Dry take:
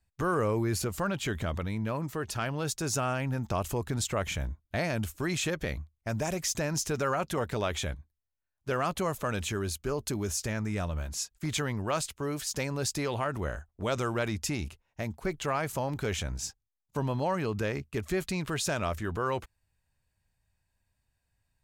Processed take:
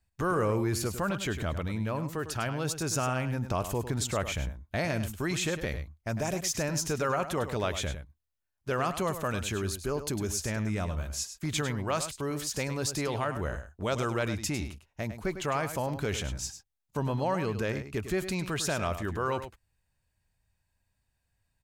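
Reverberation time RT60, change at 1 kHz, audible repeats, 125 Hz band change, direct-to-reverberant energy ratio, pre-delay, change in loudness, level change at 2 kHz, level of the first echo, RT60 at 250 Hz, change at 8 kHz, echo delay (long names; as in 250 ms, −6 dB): no reverb audible, +0.5 dB, 1, +0.5 dB, no reverb audible, no reverb audible, +0.5 dB, +0.5 dB, −10.5 dB, no reverb audible, +0.5 dB, 102 ms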